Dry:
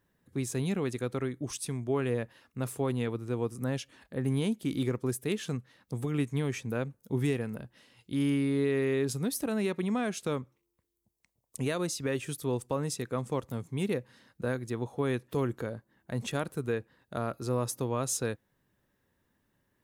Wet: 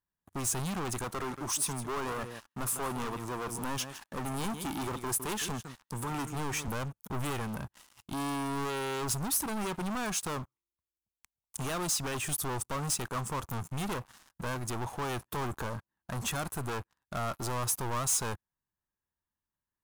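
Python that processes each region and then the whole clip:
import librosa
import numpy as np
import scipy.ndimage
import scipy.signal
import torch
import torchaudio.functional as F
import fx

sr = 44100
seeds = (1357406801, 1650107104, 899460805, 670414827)

y = fx.chain(x, sr, fx.highpass(hz=150.0, slope=12),
    fx.echo_single(ms=159, db=-15.5), at=(1.04, 6.68))
y = fx.leveller(y, sr, passes=5)
y = fx.graphic_eq(y, sr, hz=(125, 250, 500, 1000, 2000, 4000), db=(-7, -7, -12, 4, -6, -5))
y = y * librosa.db_to_amplitude(-4.5)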